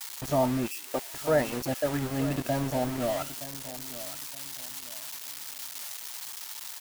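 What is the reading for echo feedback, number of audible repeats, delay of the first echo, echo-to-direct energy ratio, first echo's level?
29%, 2, 0.921 s, -14.5 dB, -15.0 dB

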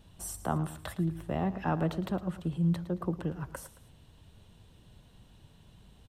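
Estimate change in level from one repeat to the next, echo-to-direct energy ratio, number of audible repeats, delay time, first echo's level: -7.5 dB, -14.0 dB, 2, 0.111 s, -14.5 dB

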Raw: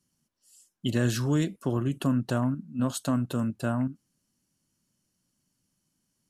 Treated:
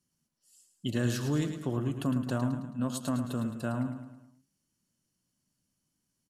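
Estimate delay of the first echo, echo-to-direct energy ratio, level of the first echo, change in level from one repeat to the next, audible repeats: 0.108 s, -7.5 dB, -8.5 dB, -6.5 dB, 5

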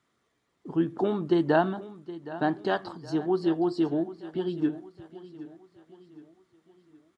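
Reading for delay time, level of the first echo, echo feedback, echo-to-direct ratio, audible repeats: 0.768 s, -16.0 dB, 43%, -15.0 dB, 3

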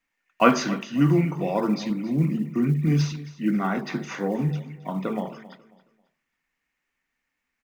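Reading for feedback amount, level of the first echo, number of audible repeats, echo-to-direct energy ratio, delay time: 29%, -17.5 dB, 2, -17.0 dB, 0.271 s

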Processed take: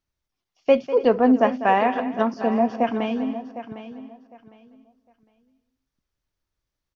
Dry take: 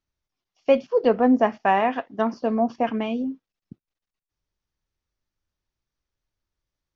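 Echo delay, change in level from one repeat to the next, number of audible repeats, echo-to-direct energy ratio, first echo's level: 0.197 s, no steady repeat, 6, -9.5 dB, -14.0 dB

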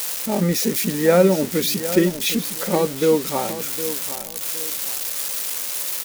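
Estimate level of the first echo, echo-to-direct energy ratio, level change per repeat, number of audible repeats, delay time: -12.0 dB, -11.5 dB, -10.0 dB, 2, 0.762 s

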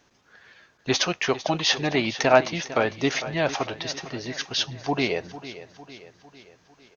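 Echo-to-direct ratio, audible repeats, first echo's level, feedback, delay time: -13.0 dB, 4, -14.5 dB, 52%, 0.452 s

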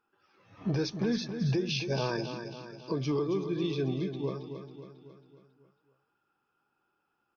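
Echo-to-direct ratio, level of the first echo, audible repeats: -7.5 dB, -9.0 dB, 5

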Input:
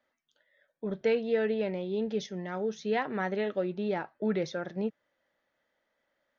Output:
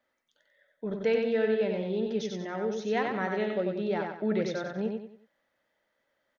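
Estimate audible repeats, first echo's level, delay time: 4, -4.0 dB, 93 ms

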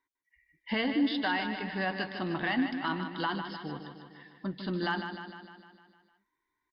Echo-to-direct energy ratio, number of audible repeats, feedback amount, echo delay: -6.0 dB, 7, 60%, 0.152 s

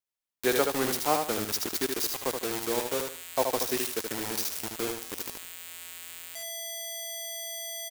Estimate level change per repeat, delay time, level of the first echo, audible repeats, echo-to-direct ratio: -11.5 dB, 76 ms, -5.0 dB, 3, -4.5 dB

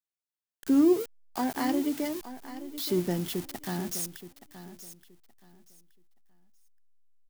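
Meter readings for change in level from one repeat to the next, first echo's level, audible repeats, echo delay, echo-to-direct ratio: -13.0 dB, -13.5 dB, 2, 0.874 s, -13.5 dB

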